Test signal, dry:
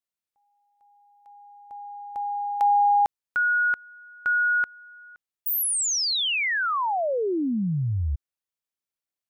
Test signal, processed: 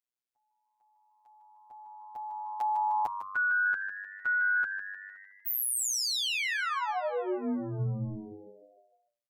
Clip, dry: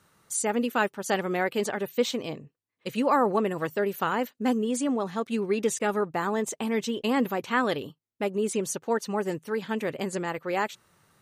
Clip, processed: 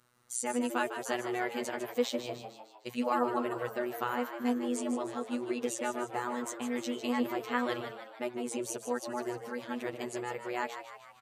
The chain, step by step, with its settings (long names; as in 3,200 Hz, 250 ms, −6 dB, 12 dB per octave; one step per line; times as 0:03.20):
mains-hum notches 50/100/150 Hz
phases set to zero 122 Hz
on a send: echo with shifted repeats 152 ms, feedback 53%, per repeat +98 Hz, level −9.5 dB
on the sum: level −4.5 dB